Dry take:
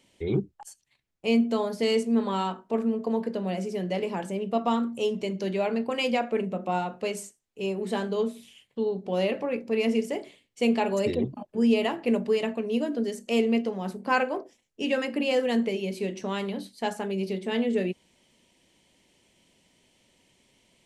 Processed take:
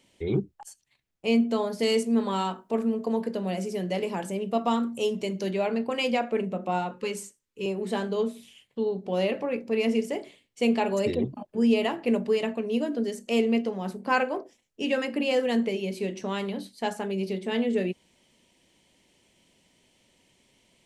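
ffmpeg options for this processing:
-filter_complex "[0:a]asettb=1/sr,asplit=3[a][b][c];[a]atrim=end=1.794[d];[b]atrim=start=1.79:end=5.51,asetpts=PTS-STARTPTS,afade=t=in:d=0.004:c=qsin,afade=t=out:st=3.716:d=0.004:c=qsin,highshelf=f=7.4k:g=9[e];[c]atrim=start=5.506[f];[d][e]acrossfade=d=0.004:c1=hsin:c2=qsin[g];[g][f]acrossfade=d=0.004:c1=qsin:c2=hsin,asettb=1/sr,asplit=3[h][i][j];[h]atrim=end=6.914[k];[i]atrim=start=6.91:end=7.66,asetpts=PTS-STARTPTS,afade=t=in:d=0.004:c=qsin,afade=t=out:st=0.746:d=0.004:c=qsin,asuperstop=centerf=700:order=20:qfactor=3[l];[j]atrim=start=7.656[m];[k][l]acrossfade=d=0.004:c1=hsin:c2=qsin[n];[n][m]acrossfade=d=0.004:c1=qsin:c2=hsin"

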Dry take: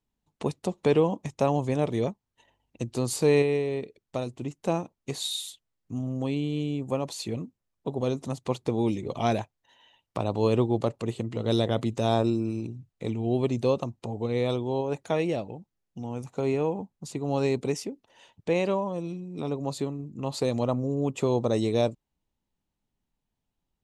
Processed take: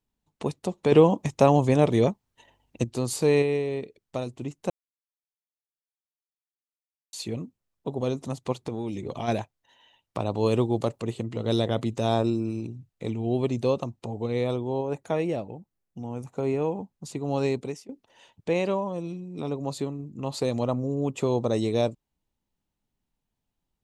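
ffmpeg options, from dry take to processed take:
-filter_complex "[0:a]asplit=3[a][b][c];[a]afade=t=out:st=8.52:d=0.02[d];[b]acompressor=threshold=-27dB:ratio=5:attack=3.2:release=140:knee=1:detection=peak,afade=t=in:st=8.52:d=0.02,afade=t=out:st=9.27:d=0.02[e];[c]afade=t=in:st=9.27:d=0.02[f];[d][e][f]amix=inputs=3:normalize=0,asettb=1/sr,asplit=3[g][h][i];[g]atrim=end=10.464[j];[h]atrim=start=10.46:end=11,asetpts=PTS-STARTPTS,afade=t=in:d=0.004:c=qsin,afade=t=out:st=0.536:d=0.004:c=qsin,highshelf=f=6.7k:g=9.5[k];[i]atrim=start=10.996[l];[j][k]acrossfade=d=0.004:c1=hsin:c2=qsin[m];[m][l]acrossfade=d=0.004:c1=qsin:c2=hsin,asettb=1/sr,asplit=3[n][o][p];[n]atrim=end=14.444[q];[o]atrim=start=14.44:end=16.62,asetpts=PTS-STARTPTS,afade=t=in:d=0.004:c=qsin,afade=t=out:st=2.176:d=0.004:c=qsin,equalizer=f=4.1k:t=o:w=1.7:g=-5.5[r];[p]atrim=start=16.616[s];[q][r]acrossfade=d=0.004:c1=hsin:c2=qsin[t];[t][s]acrossfade=d=0.004:c1=qsin:c2=hsin,asplit=6[u][v][w][x][y][z];[u]atrim=end=0.922[aa];[v]atrim=start=0.918:end=2.842,asetpts=PTS-STARTPTS,volume=6dB[ab];[w]atrim=start=2.838:end=4.7,asetpts=PTS-STARTPTS,afade=t=out:st=1.858:d=0.004:c=hsin[ac];[x]atrim=start=4.7:end=7.13,asetpts=PTS-STARTPTS,volume=0[ad];[y]atrim=start=7.13:end=17.89,asetpts=PTS-STARTPTS,afade=t=in:d=0.004:c=hsin,afade=t=out:st=10.36:d=0.4:silence=0.0944061[ae];[z]atrim=start=17.89,asetpts=PTS-STARTPTS,afade=t=in:d=0.004:c=hsin:silence=0.0944061[af];[aa][ab]acrossfade=d=0.004:c1=hsin:c2=hsin[ag];[ac][ad][ae][af]concat=n=4:v=0:a=1[ah];[ag][ah]acrossfade=d=0.004:c1=hsin:c2=hsin"

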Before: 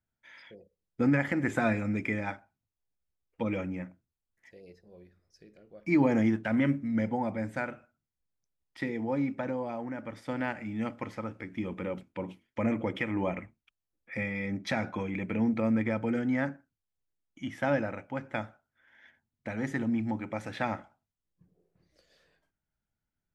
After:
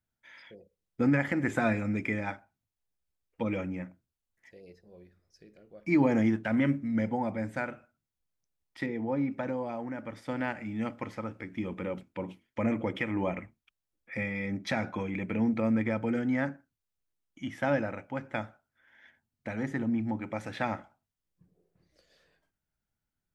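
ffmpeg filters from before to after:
-filter_complex "[0:a]asettb=1/sr,asplit=3[a][b][c];[a]atrim=end=8.864[d];[b]atrim=start=8.86:end=9.32,asetpts=PTS-STARTPTS,afade=t=in:d=0.004:c=qsin,afade=t=out:st=0.456:d=0.004:c=qsin,lowpass=f=2.4k:p=1[e];[c]atrim=start=9.316[f];[d][e]acrossfade=d=0.004:c1=hsin:c2=qsin[g];[g][f]acrossfade=d=0.004:c1=qsin:c2=hsin,asettb=1/sr,asplit=3[h][i][j];[h]atrim=end=19.634[k];[i]atrim=start=19.63:end=20.22,asetpts=PTS-STARTPTS,afade=t=in:d=0.004:c=qsin,afade=t=out:st=0.586:d=0.004:c=qsin,highshelf=f=2.2k:g=-6[l];[j]atrim=start=20.216[m];[k][l]acrossfade=d=0.004:c1=hsin:c2=qsin[n];[n][m]acrossfade=d=0.004:c1=qsin:c2=hsin"

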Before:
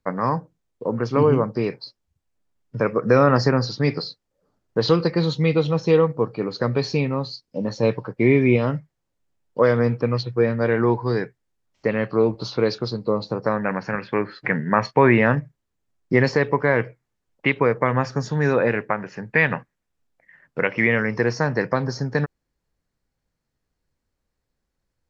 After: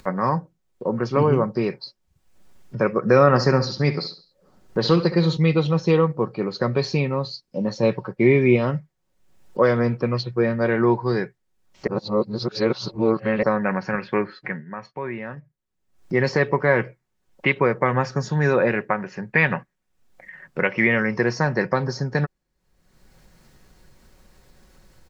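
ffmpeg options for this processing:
-filter_complex "[0:a]asettb=1/sr,asplit=3[a][b][c];[a]atrim=end=3.264[d];[b]atrim=start=3.26:end=5.37,asetpts=PTS-STARTPTS,afade=t=in:d=0.004:c=qsin,afade=t=out:st=2.106:d=0.004:c=qsin,aecho=1:1:68|136|204:0.224|0.0739|0.0244,atrim=end_sample=93051[e];[c]atrim=start=5.366[f];[d][e]acrossfade=d=0.004:c1=hsin:c2=qsin[g];[g][f]acrossfade=d=0.004:c1=qsin:c2=hsin,asplit=5[h][i][j][k][l];[h]atrim=end=11.872[m];[i]atrim=start=11.868:end=13.432,asetpts=PTS-STARTPTS,areverse[n];[j]atrim=start=13.428:end=14.65,asetpts=PTS-STARTPTS,afade=t=out:st=0.752:d=0.47:silence=0.149624[o];[k]atrim=start=14.65:end=15.91,asetpts=PTS-STARTPTS,volume=-16.5dB[p];[l]atrim=start=15.91,asetpts=PTS-STARTPTS,afade=t=in:d=0.47:silence=0.149624[q];[m][n]acrossfade=d=0.004:c1=hsin:c2=hsin[r];[o][p][q]concat=n=3:v=0:a=1[s];[r][s]acrossfade=d=0.004:c1=hsin:c2=hsin,acompressor=mode=upward:threshold=-33dB:ratio=2.5,aecho=1:1:5.4:0.37"

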